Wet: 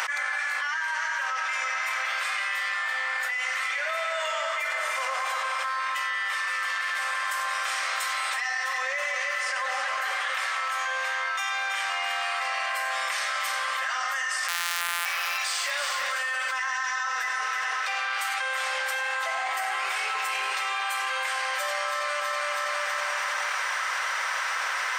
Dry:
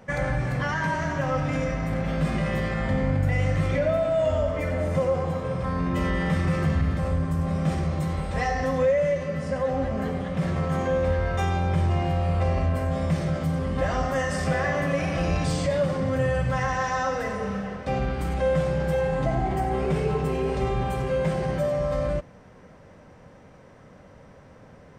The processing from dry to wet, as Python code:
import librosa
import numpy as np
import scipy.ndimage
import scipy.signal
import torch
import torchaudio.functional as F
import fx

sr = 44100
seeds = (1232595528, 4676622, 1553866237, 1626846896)

p1 = fx.sample_sort(x, sr, block=256, at=(14.48, 15.06))
p2 = scipy.signal.sosfilt(scipy.signal.butter(4, 1200.0, 'highpass', fs=sr, output='sos'), p1)
p3 = p2 + fx.echo_feedback(p2, sr, ms=325, feedback_pct=48, wet_db=-9, dry=0)
y = fx.env_flatten(p3, sr, amount_pct=100)